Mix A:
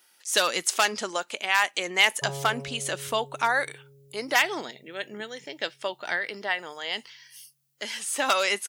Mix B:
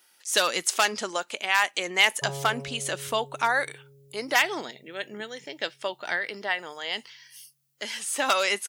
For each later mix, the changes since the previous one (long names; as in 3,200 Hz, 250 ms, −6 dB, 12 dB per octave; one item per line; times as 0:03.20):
nothing changed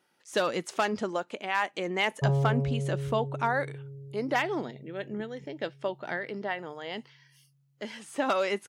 speech −3.5 dB
master: add spectral tilt −4.5 dB per octave